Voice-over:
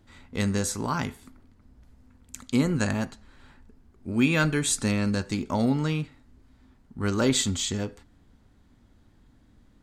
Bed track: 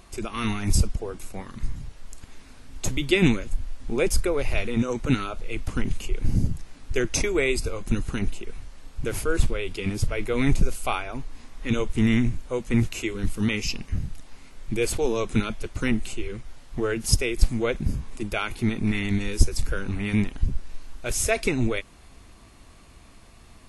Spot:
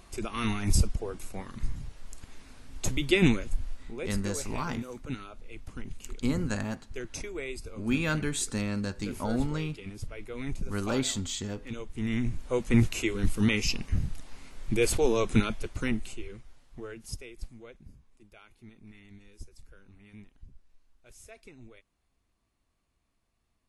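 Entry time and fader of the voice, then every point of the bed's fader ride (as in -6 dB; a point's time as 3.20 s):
3.70 s, -6.0 dB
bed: 3.73 s -3 dB
3.94 s -14 dB
11.91 s -14 dB
12.54 s -0.5 dB
15.39 s -0.5 dB
17.99 s -27 dB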